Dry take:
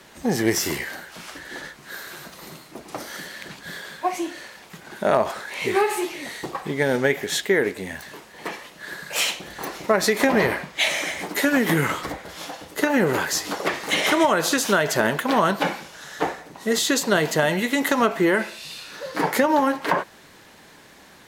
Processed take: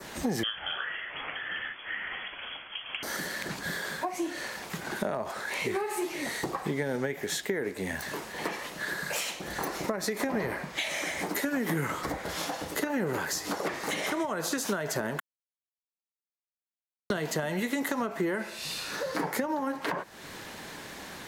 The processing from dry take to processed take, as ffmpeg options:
-filter_complex "[0:a]asettb=1/sr,asplit=3[s0][s1][s2];[s0]atrim=end=0.434[s3];[s1]atrim=start=0.43:end=3.03,asetpts=PTS-STARTPTS,afade=t=in:d=0.004:c=qsin,afade=t=out:st=2.596:d=0.004:c=qsin,lowpass=f=3000:t=q:w=0.5098,lowpass=f=3000:t=q:w=0.6013,lowpass=f=3000:t=q:w=0.9,lowpass=f=3000:t=q:w=2.563,afreqshift=-3500[s4];[s2]atrim=start=3.026[s5];[s3][s4]acrossfade=d=0.004:c1=hsin:c2=qsin[s6];[s6][s5]acrossfade=d=0.004:c1=qsin:c2=hsin,asplit=3[s7][s8][s9];[s7]atrim=end=15.2,asetpts=PTS-STARTPTS,afade=t=out:st=15.196:d=0.004:c=hsin[s10];[s8]atrim=start=15.2:end=17.1,asetpts=PTS-STARTPTS,volume=0[s11];[s9]atrim=start=17.1,asetpts=PTS-STARTPTS,afade=t=in:d=0.004:c=hsin[s12];[s10][s11][s12]concat=n=3:v=0:a=1,acompressor=threshold=0.0158:ratio=3,adynamicequalizer=threshold=0.00282:dfrequency=3100:dqfactor=1.4:tfrequency=3100:tqfactor=1.4:attack=5:release=100:ratio=0.375:range=3:mode=cutabove:tftype=bell,acrossover=split=260[s13][s14];[s14]acompressor=threshold=0.02:ratio=6[s15];[s13][s15]amix=inputs=2:normalize=0,volume=2"

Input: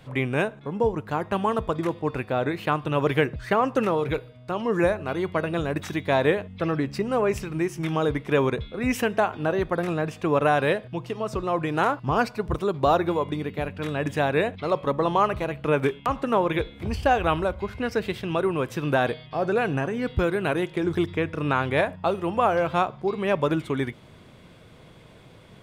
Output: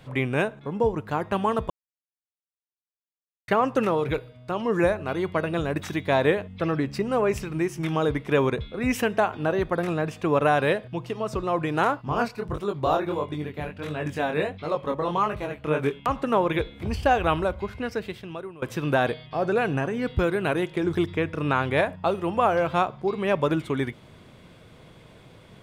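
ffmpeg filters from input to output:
-filter_complex "[0:a]asplit=3[s0][s1][s2];[s0]afade=t=out:st=11.97:d=0.02[s3];[s1]flanger=delay=19:depth=7.5:speed=1.5,afade=t=in:st=11.97:d=0.02,afade=t=out:st=15.91:d=0.02[s4];[s2]afade=t=in:st=15.91:d=0.02[s5];[s3][s4][s5]amix=inputs=3:normalize=0,asplit=4[s6][s7][s8][s9];[s6]atrim=end=1.7,asetpts=PTS-STARTPTS,afade=t=out:st=1.696:d=0.004:c=hsin[s10];[s7]atrim=start=1.7:end=3.48,asetpts=PTS-STARTPTS,volume=0[s11];[s8]atrim=start=3.48:end=18.62,asetpts=PTS-STARTPTS,afade=t=in:d=0.004:c=hsin,afade=t=out:st=14.06:d=1.08:silence=0.0794328[s12];[s9]atrim=start=18.62,asetpts=PTS-STARTPTS,afade=t=in:d=0.004:c=hsin:silence=0.0794328[s13];[s10][s11][s12][s13]concat=n=4:v=0:a=1"

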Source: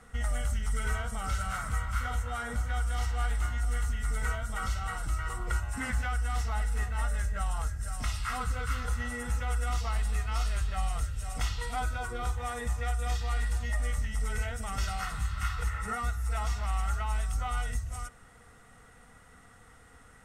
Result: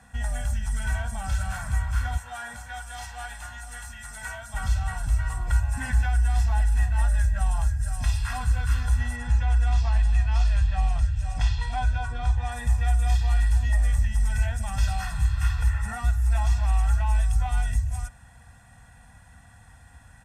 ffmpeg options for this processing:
-filter_complex "[0:a]asettb=1/sr,asplit=3[s0][s1][s2];[s0]atrim=end=2.174[s3];[s1]atrim=start=2.17:end=4.54,asetpts=PTS-STARTPTS,afade=t=in:d=0.004:c=qsin,afade=t=out:st=2.366:d=0.004:c=qsin,highpass=f=610:p=1[s4];[s2]atrim=start=4.536[s5];[s3][s4]acrossfade=d=0.004:c1=hsin:c2=qsin[s6];[s6][s5]acrossfade=d=0.004:c1=qsin:c2=hsin,asettb=1/sr,asplit=3[s7][s8][s9];[s7]atrim=end=9.164[s10];[s8]atrim=start=9.16:end=12.52,asetpts=PTS-STARTPTS,afade=t=in:d=0.004:c=qsin,afade=t=out:st=3.356:d=0.004:c=qsin,lowpass=5900[s11];[s9]atrim=start=12.516[s12];[s10][s11]acrossfade=d=0.004:c1=hsin:c2=qsin[s13];[s13][s12]acrossfade=d=0.004:c1=qsin:c2=hsin,highpass=58,asubboost=boost=2:cutoff=140,aecho=1:1:1.2:0.86"

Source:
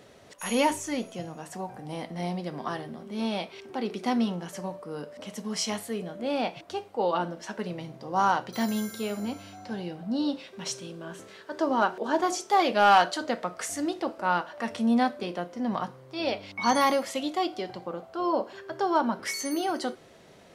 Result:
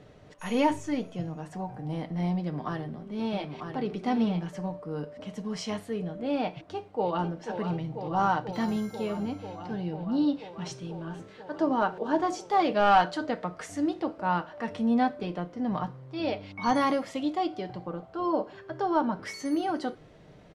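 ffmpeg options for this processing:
-filter_complex "[0:a]asettb=1/sr,asplit=3[s0][s1][s2];[s0]atrim=end=2.384[s3];[s1]atrim=start=2.38:end=4.48,asetpts=PTS-STARTPTS,afade=t=in:d=0.004:c=qsin,afade=t=out:st=2.096:d=0.004:c=qsin,aecho=1:1:946:0.501,atrim=end_sample=92610[s4];[s2]atrim=start=4.476[s5];[s3][s4]acrossfade=d=0.004:c1=hsin:c2=qsin[s6];[s6][s5]acrossfade=d=0.004:c1=qsin:c2=hsin,asplit=2[s7][s8];[s8]afade=t=in:st=6.51:d=0.01,afade=t=out:st=7.3:d=0.01,aecho=0:1:490|980|1470|1960|2450|2940|3430|3920|4410|4900|5390|5880:0.398107|0.338391|0.287632|0.244488|0.207814|0.176642|0.150146|0.127624|0.10848|0.0922084|0.0783771|0.0666205[s9];[s7][s9]amix=inputs=2:normalize=0,aemphasis=mode=reproduction:type=bsi,aecho=1:1:6.6:0.35,volume=0.708"

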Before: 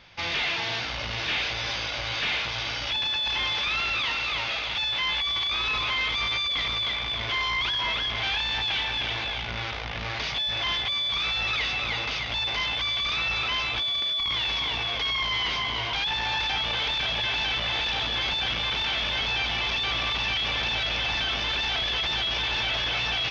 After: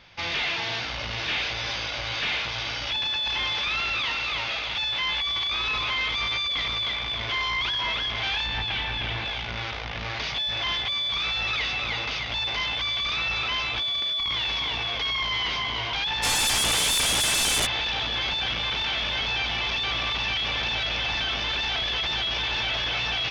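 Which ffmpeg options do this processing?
-filter_complex "[0:a]asettb=1/sr,asplit=3[s0][s1][s2];[s0]atrim=end=8.464[s3];[s1]atrim=start=8.46:end=9.25,asetpts=PTS-STARTPTS,afade=t=in:d=0.004:c=qsin,afade=t=out:st=0.786:d=0.004:c=qsin,bass=f=250:g=6,treble=f=4000:g=-7[s4];[s2]atrim=start=9.246[s5];[s3][s4]acrossfade=d=0.004:c1=hsin:c2=qsin[s6];[s6][s5]acrossfade=d=0.004:c1=qsin:c2=hsin,asplit=3[s7][s8][s9];[s7]afade=t=out:st=16.22:d=0.02[s10];[s8]aeval=exprs='0.1*sin(PI/2*2.82*val(0)/0.1)':c=same,afade=t=in:st=16.22:d=0.02,afade=t=out:st=17.65:d=0.02[s11];[s9]afade=t=in:st=17.65:d=0.02[s12];[s10][s11][s12]amix=inputs=3:normalize=0"

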